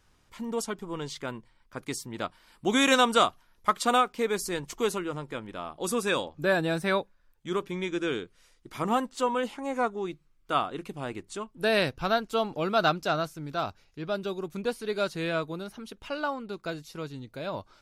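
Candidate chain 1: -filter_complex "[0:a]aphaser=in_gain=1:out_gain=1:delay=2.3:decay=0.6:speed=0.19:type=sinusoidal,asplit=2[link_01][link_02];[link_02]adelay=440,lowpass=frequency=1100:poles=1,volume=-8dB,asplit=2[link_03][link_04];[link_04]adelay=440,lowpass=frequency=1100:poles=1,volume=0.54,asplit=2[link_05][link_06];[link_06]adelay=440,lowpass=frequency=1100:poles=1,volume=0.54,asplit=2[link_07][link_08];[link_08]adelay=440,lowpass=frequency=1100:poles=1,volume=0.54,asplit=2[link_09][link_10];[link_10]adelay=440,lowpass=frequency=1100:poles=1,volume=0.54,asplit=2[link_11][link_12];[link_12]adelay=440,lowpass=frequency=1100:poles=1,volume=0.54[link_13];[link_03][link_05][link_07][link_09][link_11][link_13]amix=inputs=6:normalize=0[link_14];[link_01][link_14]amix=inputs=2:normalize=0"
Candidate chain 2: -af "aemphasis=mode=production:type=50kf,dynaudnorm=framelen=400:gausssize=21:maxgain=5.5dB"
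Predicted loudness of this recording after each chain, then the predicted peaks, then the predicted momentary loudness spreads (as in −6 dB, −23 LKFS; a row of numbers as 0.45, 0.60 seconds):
−27.0, −24.5 LKFS; −5.0, −6.0 dBFS; 13, 17 LU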